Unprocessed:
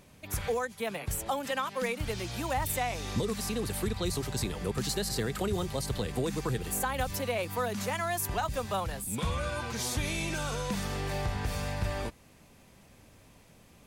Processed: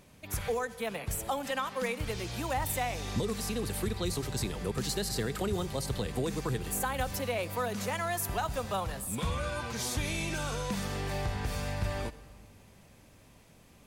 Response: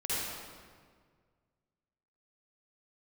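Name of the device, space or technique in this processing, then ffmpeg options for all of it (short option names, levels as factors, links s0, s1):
saturated reverb return: -filter_complex "[0:a]asplit=2[s0][s1];[1:a]atrim=start_sample=2205[s2];[s1][s2]afir=irnorm=-1:irlink=0,asoftclip=type=tanh:threshold=0.119,volume=0.0944[s3];[s0][s3]amix=inputs=2:normalize=0,volume=0.841"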